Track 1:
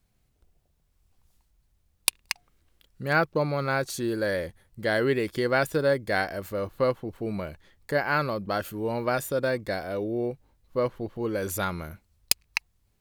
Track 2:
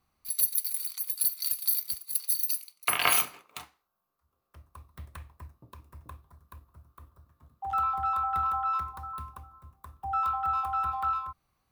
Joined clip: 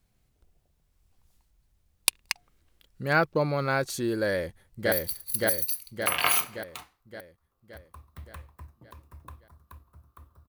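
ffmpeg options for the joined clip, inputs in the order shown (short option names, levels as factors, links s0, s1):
-filter_complex "[0:a]apad=whole_dur=10.48,atrim=end=10.48,atrim=end=4.922[s0];[1:a]atrim=start=1.728:end=7.29[s1];[s0][s1]acrossfade=d=0.004:c1=hsin:c2=hsin,asplit=2[s2][s3];[s3]afade=t=in:st=4.28:d=0.01,afade=t=out:st=4.92:d=0.01,aecho=0:1:570|1140|1710|2280|2850|3420|3990|4560:0.944061|0.519233|0.285578|0.157068|0.0863875|0.0475131|0.0261322|0.0143727[s4];[s2][s4]amix=inputs=2:normalize=0"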